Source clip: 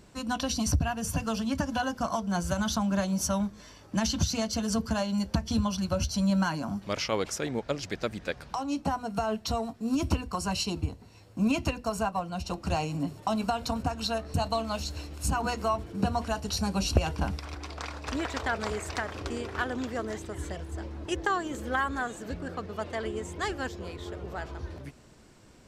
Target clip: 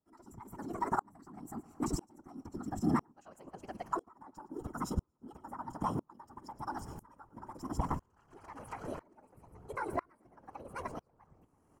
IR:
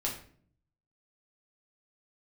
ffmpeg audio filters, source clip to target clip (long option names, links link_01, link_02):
-filter_complex "[0:a]asplit=2[link_01][link_02];[link_02]adynamicsmooth=sensitivity=2:basefreq=2200,volume=-3dB[link_03];[link_01][link_03]amix=inputs=2:normalize=0,asuperstop=centerf=2800:order=8:qfactor=6.9,acontrast=37,asplit=2[link_04][link_05];[1:a]atrim=start_sample=2205,lowshelf=frequency=330:gain=-11.5[link_06];[link_05][link_06]afir=irnorm=-1:irlink=0,volume=-20dB[link_07];[link_04][link_07]amix=inputs=2:normalize=0,asetrate=56448,aresample=44100,equalizer=frequency=125:width_type=o:width=1:gain=-4,equalizer=frequency=250:width_type=o:width=1:gain=3,equalizer=frequency=500:width_type=o:width=1:gain=-5,equalizer=frequency=1000:width_type=o:width=1:gain=7,equalizer=frequency=2000:width_type=o:width=1:gain=-8,equalizer=frequency=4000:width_type=o:width=1:gain=-10,afftfilt=real='hypot(re,im)*cos(2*PI*random(0))':imag='hypot(re,im)*sin(2*PI*random(1))':win_size=512:overlap=0.75,atempo=1.7,aecho=1:1:112|224|336|448|560:0.0891|0.0517|0.03|0.0174|0.0101,aeval=exprs='val(0)*pow(10,-33*if(lt(mod(-1*n/s,1),2*abs(-1)/1000),1-mod(-1*n/s,1)/(2*abs(-1)/1000),(mod(-1*n/s,1)-2*abs(-1)/1000)/(1-2*abs(-1)/1000))/20)':channel_layout=same,volume=-5dB"